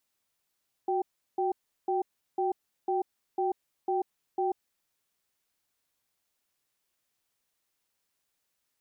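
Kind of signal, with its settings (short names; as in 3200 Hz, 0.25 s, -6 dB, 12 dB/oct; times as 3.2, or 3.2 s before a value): cadence 369 Hz, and 780 Hz, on 0.14 s, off 0.36 s, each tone -28 dBFS 3.89 s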